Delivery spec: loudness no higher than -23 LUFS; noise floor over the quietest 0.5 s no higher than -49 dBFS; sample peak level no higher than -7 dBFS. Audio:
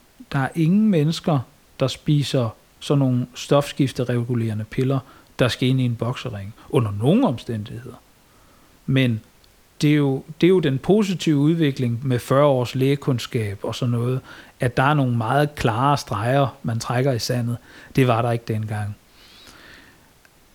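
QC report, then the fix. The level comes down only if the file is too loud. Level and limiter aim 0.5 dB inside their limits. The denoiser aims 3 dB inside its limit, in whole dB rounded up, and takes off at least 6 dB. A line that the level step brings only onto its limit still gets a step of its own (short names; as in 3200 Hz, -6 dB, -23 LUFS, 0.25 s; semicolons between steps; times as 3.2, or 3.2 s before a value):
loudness -21.0 LUFS: fail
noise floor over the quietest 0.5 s -54 dBFS: OK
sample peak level -3.0 dBFS: fail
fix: gain -2.5 dB; limiter -7.5 dBFS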